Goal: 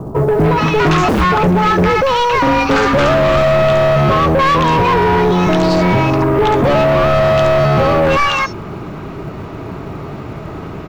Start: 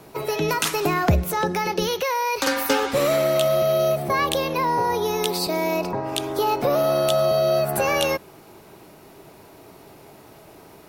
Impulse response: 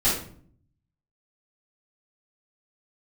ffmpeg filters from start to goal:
-filter_complex "[0:a]equalizer=f=1.2k:t=o:w=0.44:g=9,acrossover=split=950|5400[a][b][c];[b]adelay=290[d];[c]adelay=360[e];[a][d][e]amix=inputs=3:normalize=0,aresample=16000,asoftclip=type=tanh:threshold=-24.5dB,aresample=44100,bass=f=250:g=11,treble=f=4k:g=-12,acrusher=bits=9:mode=log:mix=0:aa=0.000001,aeval=exprs='0.237*sin(PI/2*2.51*val(0)/0.237)':c=same,volume=4.5dB"

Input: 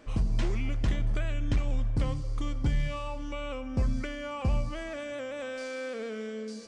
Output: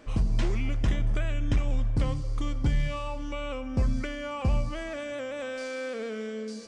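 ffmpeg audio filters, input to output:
-filter_complex "[0:a]asettb=1/sr,asplit=3[a][b][c];[a]atrim=end=0.794[d];[b]atrim=start=0.79:end=1.71,asetpts=PTS-STARTPTS,afade=t=in:d=0.004:c=qsin,afade=t=out:st=0.916:d=0.004:c=qsin,bandreject=f=4.3k:w=7[e];[c]atrim=start=1.706[f];[d][e]acrossfade=d=0.004:c1=hsin:c2=qsin[g];[g][f]acrossfade=d=0.004:c1=qsin:c2=hsin,volume=2dB"

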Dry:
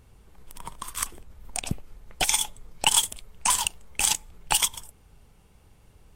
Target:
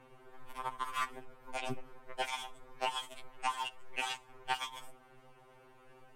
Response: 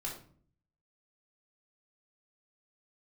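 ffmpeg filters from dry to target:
-filter_complex "[0:a]acrossover=split=280 2500:gain=0.141 1 0.141[a][b][c];[a][b][c]amix=inputs=3:normalize=0,acompressor=threshold=-37dB:ratio=12,asplit=2[d][e];[1:a]atrim=start_sample=2205[f];[e][f]afir=irnorm=-1:irlink=0,volume=-19.5dB[g];[d][g]amix=inputs=2:normalize=0,acrossover=split=5800[h][i];[i]acompressor=threshold=-57dB:ratio=4:attack=1:release=60[j];[h][j]amix=inputs=2:normalize=0,afftfilt=real='re*2.45*eq(mod(b,6),0)':imag='im*2.45*eq(mod(b,6),0)':win_size=2048:overlap=0.75,volume=8dB"

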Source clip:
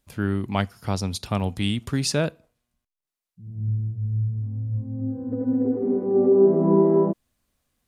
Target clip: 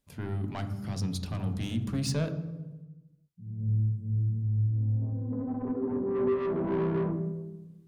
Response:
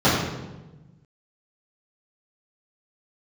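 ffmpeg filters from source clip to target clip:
-filter_complex "[0:a]asettb=1/sr,asplit=3[a][b][c];[a]atrim=end=3.604[d];[b]atrim=start=3.6:end=4.43,asetpts=PTS-STARTPTS,afade=t=in:d=0.004:c=qsin,afade=t=out:st=0.826:d=0.004:c=qsin,equalizer=f=125:t=o:w=1:g=-5,equalizer=f=250:t=o:w=1:g=7,equalizer=f=500:t=o:w=1:g=-5,equalizer=f=2k:t=o:w=1:g=-11,equalizer=f=8k:t=o:w=1:g=11[e];[c]atrim=start=4.426[f];[d][e]acrossfade=d=0.004:c1=hsin:c2=qsin[g];[g][f]acrossfade=d=0.004:c1=qsin:c2=hsin,asoftclip=type=tanh:threshold=-21.5dB,asplit=2[h][i];[1:a]atrim=start_sample=2205,lowshelf=f=280:g=8.5[j];[i][j]afir=irnorm=-1:irlink=0,volume=-30.5dB[k];[h][k]amix=inputs=2:normalize=0,volume=-7.5dB"

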